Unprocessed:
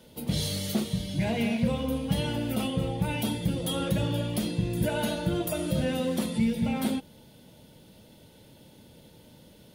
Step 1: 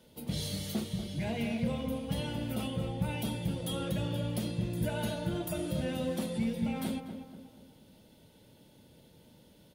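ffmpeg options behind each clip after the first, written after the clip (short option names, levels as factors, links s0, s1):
-filter_complex "[0:a]asplit=2[s0][s1];[s1]adelay=241,lowpass=f=1700:p=1,volume=0.398,asplit=2[s2][s3];[s3]adelay=241,lowpass=f=1700:p=1,volume=0.45,asplit=2[s4][s5];[s5]adelay=241,lowpass=f=1700:p=1,volume=0.45,asplit=2[s6][s7];[s7]adelay=241,lowpass=f=1700:p=1,volume=0.45,asplit=2[s8][s9];[s9]adelay=241,lowpass=f=1700:p=1,volume=0.45[s10];[s0][s2][s4][s6][s8][s10]amix=inputs=6:normalize=0,volume=0.473"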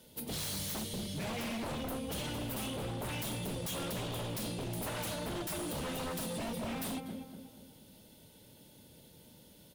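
-af "aemphasis=mode=production:type=cd,aeval=exprs='0.0224*(abs(mod(val(0)/0.0224+3,4)-2)-1)':c=same"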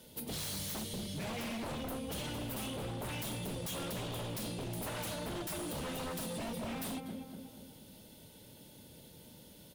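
-af "acompressor=threshold=0.00447:ratio=1.5,volume=1.33"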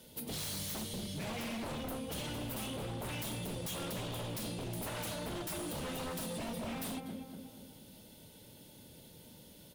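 -af "bandreject=f=67.62:t=h:w=4,bandreject=f=135.24:t=h:w=4,bandreject=f=202.86:t=h:w=4,bandreject=f=270.48:t=h:w=4,bandreject=f=338.1:t=h:w=4,bandreject=f=405.72:t=h:w=4,bandreject=f=473.34:t=h:w=4,bandreject=f=540.96:t=h:w=4,bandreject=f=608.58:t=h:w=4,bandreject=f=676.2:t=h:w=4,bandreject=f=743.82:t=h:w=4,bandreject=f=811.44:t=h:w=4,bandreject=f=879.06:t=h:w=4,bandreject=f=946.68:t=h:w=4,bandreject=f=1014.3:t=h:w=4,bandreject=f=1081.92:t=h:w=4,bandreject=f=1149.54:t=h:w=4,bandreject=f=1217.16:t=h:w=4,bandreject=f=1284.78:t=h:w=4,bandreject=f=1352.4:t=h:w=4,bandreject=f=1420.02:t=h:w=4,bandreject=f=1487.64:t=h:w=4,bandreject=f=1555.26:t=h:w=4,bandreject=f=1622.88:t=h:w=4,bandreject=f=1690.5:t=h:w=4,bandreject=f=1758.12:t=h:w=4,bandreject=f=1825.74:t=h:w=4,bandreject=f=1893.36:t=h:w=4"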